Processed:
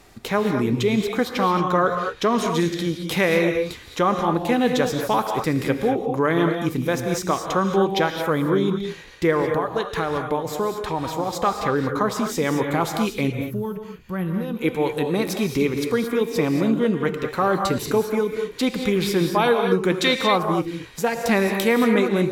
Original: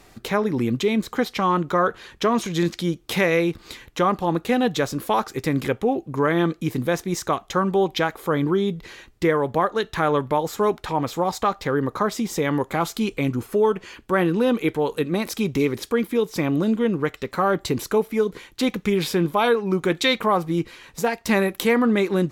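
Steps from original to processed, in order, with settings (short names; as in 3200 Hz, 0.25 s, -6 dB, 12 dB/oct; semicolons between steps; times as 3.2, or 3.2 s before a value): 9.4–11.33 compressor, threshold -21 dBFS, peak gain reduction 6.5 dB; 13.3–14.61 spectral gain 220–11000 Hz -12 dB; non-linear reverb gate 0.25 s rising, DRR 4.5 dB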